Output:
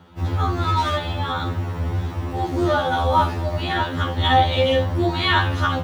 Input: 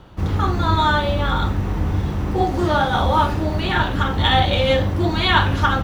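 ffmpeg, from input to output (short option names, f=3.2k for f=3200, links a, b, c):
-filter_complex "[0:a]highpass=85,asettb=1/sr,asplit=3[a][b][c];[a]atrim=end=0.524[d];[b]atrim=start=0.52:end=0.97,asetpts=PTS-STARTPTS,afade=t=in:d=0.004:c=qsin,afade=t=out:st=0.446:d=0.004:c=qsin,asoftclip=type=hard:threshold=-14dB[e];[c]atrim=start=0.966[f];[d][e]acrossfade=d=0.004:c1=hsin:c2=qsin[g];[g][f]acrossfade=d=0.004:c1=qsin:c2=hsin,afftfilt=real='re*2*eq(mod(b,4),0)':imag='im*2*eq(mod(b,4),0)':win_size=2048:overlap=0.75"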